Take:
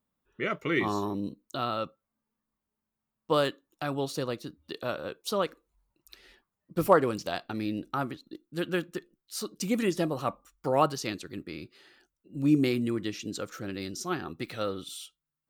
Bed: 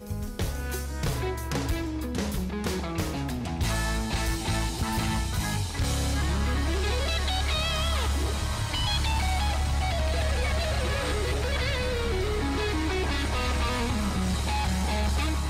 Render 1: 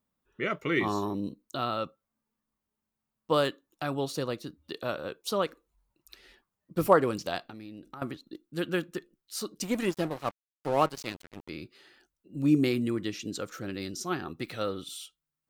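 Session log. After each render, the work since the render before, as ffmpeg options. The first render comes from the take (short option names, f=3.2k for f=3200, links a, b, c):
-filter_complex "[0:a]asettb=1/sr,asplit=3[a][b][c];[a]atrim=end=7.474[d];[b]atrim=start=7.47:end=8.02,asetpts=PTS-STARTPTS,afade=t=in:d=0.004:c=qsin,afade=t=out:st=0.546:d=0.004:c=qsin,acompressor=threshold=-41dB:ratio=6:attack=3.2:release=140:knee=1:detection=peak[e];[c]atrim=start=8.016[f];[d][e]acrossfade=d=0.004:c1=hsin:c2=qsin[g];[g][f]acrossfade=d=0.004:c1=qsin:c2=hsin,asettb=1/sr,asplit=3[h][i][j];[h]atrim=end=9.634[k];[i]atrim=start=9.63:end=11.49,asetpts=PTS-STARTPTS,afade=t=in:d=0.004:c=qsin,afade=t=out:st=1.856:d=0.004:c=qsin,aeval=exprs='sgn(val(0))*max(abs(val(0))-0.0133,0)':c=same[l];[j]atrim=start=11.486[m];[k][l]acrossfade=d=0.004:c1=hsin:c2=qsin[n];[n][m]acrossfade=d=0.004:c1=qsin:c2=hsin"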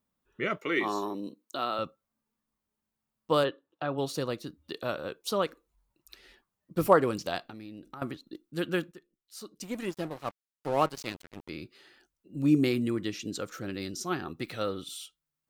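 -filter_complex "[0:a]asettb=1/sr,asplit=3[a][b][c];[a]atrim=end=0.574[d];[b]atrim=start=0.57:end=1.79,asetpts=PTS-STARTPTS,afade=t=in:d=0.004:c=qsin,afade=t=out:st=1.216:d=0.004:c=qsin,highpass=290[e];[c]atrim=start=1.786[f];[d][e]acrossfade=d=0.004:c1=hsin:c2=qsin[g];[g][f]acrossfade=d=0.004:c1=qsin:c2=hsin,asplit=3[h][i][j];[h]afade=t=out:st=3.43:d=0.02[k];[i]highpass=110,equalizer=f=220:t=q:w=4:g=-9,equalizer=f=510:t=q:w=4:g=6,equalizer=f=2.2k:t=q:w=4:g=-8,lowpass=f=3.4k:w=0.5412,lowpass=f=3.4k:w=1.3066,afade=t=in:st=3.43:d=0.02,afade=t=out:st=3.97:d=0.02[l];[j]afade=t=in:st=3.97:d=0.02[m];[k][l][m]amix=inputs=3:normalize=0,asplit=2[n][o];[n]atrim=end=8.92,asetpts=PTS-STARTPTS,afade=t=out:st=8.916:d=0.004:c=hsin:silence=0.177828[p];[o]atrim=start=8.92,asetpts=PTS-STARTPTS,afade=t=in:d=2.2:silence=0.177828[q];[p][q]concat=n=2:v=0:a=1"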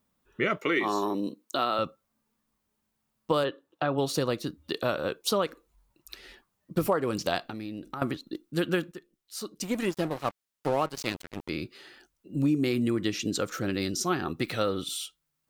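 -filter_complex "[0:a]asplit=2[a][b];[b]alimiter=limit=-16.5dB:level=0:latency=1:release=419,volume=2dB[c];[a][c]amix=inputs=2:normalize=0,acompressor=threshold=-23dB:ratio=4"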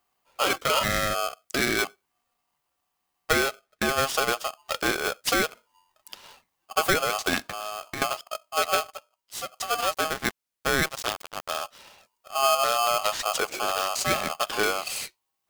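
-filter_complex "[0:a]asplit=2[a][b];[b]acrusher=bits=6:mix=0:aa=0.000001,volume=-9dB[c];[a][c]amix=inputs=2:normalize=0,aeval=exprs='val(0)*sgn(sin(2*PI*950*n/s))':c=same"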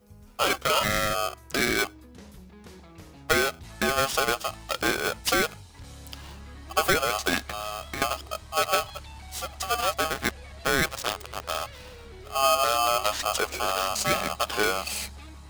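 -filter_complex "[1:a]volume=-17.5dB[a];[0:a][a]amix=inputs=2:normalize=0"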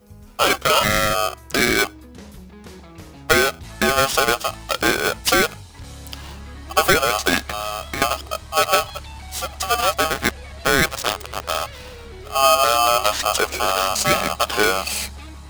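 -af "volume=7dB"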